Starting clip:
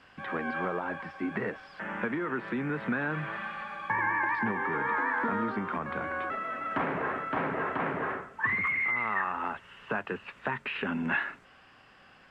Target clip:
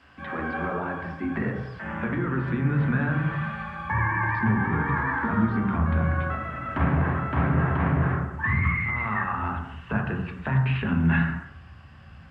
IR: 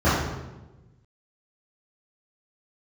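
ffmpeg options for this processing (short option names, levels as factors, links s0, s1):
-filter_complex "[0:a]asplit=2[s0][s1];[s1]asubboost=boost=10.5:cutoff=120[s2];[1:a]atrim=start_sample=2205,afade=t=out:st=0.34:d=0.01,atrim=end_sample=15435[s3];[s2][s3]afir=irnorm=-1:irlink=0,volume=0.0794[s4];[s0][s4]amix=inputs=2:normalize=0"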